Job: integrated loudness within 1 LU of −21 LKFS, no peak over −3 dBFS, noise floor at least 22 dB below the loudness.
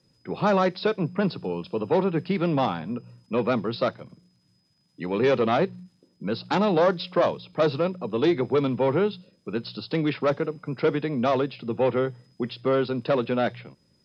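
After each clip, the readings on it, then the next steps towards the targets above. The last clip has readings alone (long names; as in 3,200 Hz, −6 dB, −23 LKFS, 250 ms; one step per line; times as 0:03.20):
integrated loudness −25.5 LKFS; sample peak −10.5 dBFS; target loudness −21.0 LKFS
→ level +4.5 dB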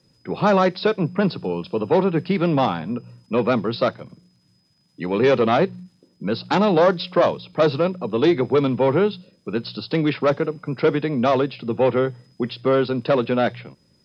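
integrated loudness −21.0 LKFS; sample peak −6.0 dBFS; background noise floor −62 dBFS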